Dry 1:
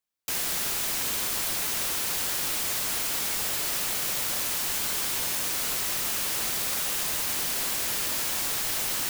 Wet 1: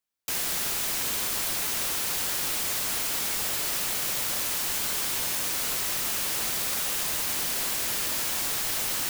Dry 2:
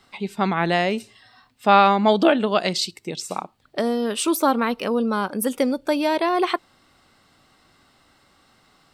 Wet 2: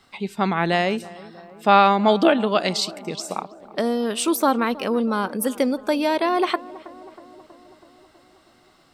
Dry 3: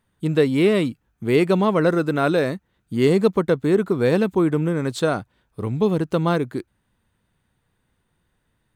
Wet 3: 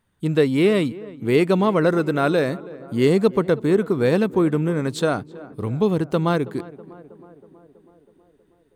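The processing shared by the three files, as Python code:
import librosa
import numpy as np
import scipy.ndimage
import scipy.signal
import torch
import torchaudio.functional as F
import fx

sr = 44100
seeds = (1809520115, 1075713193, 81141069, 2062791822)

y = fx.echo_tape(x, sr, ms=322, feedback_pct=73, wet_db=-18, lp_hz=1500.0, drive_db=4.0, wow_cents=28)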